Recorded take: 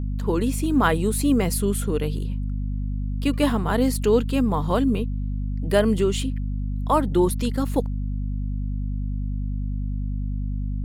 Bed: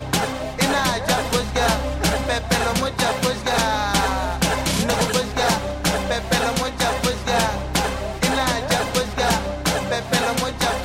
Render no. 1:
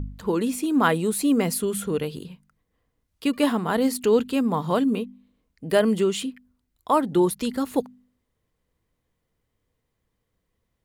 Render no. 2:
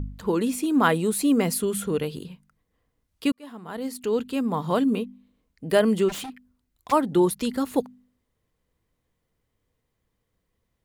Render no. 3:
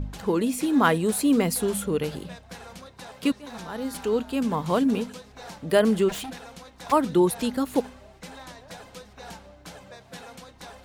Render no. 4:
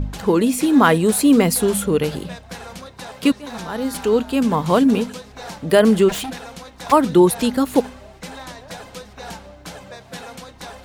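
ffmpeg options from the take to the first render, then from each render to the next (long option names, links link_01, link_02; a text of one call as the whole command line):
ffmpeg -i in.wav -af "bandreject=frequency=50:width_type=h:width=4,bandreject=frequency=100:width_type=h:width=4,bandreject=frequency=150:width_type=h:width=4,bandreject=frequency=200:width_type=h:width=4,bandreject=frequency=250:width_type=h:width=4" out.wav
ffmpeg -i in.wav -filter_complex "[0:a]asplit=3[link_01][link_02][link_03];[link_01]afade=type=out:start_time=6.08:duration=0.02[link_04];[link_02]aeval=exprs='0.0335*(abs(mod(val(0)/0.0335+3,4)-2)-1)':channel_layout=same,afade=type=in:start_time=6.08:duration=0.02,afade=type=out:start_time=6.91:duration=0.02[link_05];[link_03]afade=type=in:start_time=6.91:duration=0.02[link_06];[link_04][link_05][link_06]amix=inputs=3:normalize=0,asplit=2[link_07][link_08];[link_07]atrim=end=3.32,asetpts=PTS-STARTPTS,afade=type=out:start_time=3.316:duration=0.004:curve=hsin[link_09];[link_08]atrim=start=3.32,asetpts=PTS-STARTPTS,afade=type=in:duration=1.55[link_10];[link_09][link_10]concat=n=2:v=0:a=1" out.wav
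ffmpeg -i in.wav -i bed.wav -filter_complex "[1:a]volume=-22.5dB[link_01];[0:a][link_01]amix=inputs=2:normalize=0" out.wav
ffmpeg -i in.wav -af "volume=7.5dB,alimiter=limit=-2dB:level=0:latency=1" out.wav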